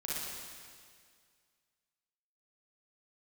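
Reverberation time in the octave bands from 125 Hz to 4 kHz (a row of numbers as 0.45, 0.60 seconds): 2.1, 2.0, 2.0, 2.0, 2.0, 2.0 seconds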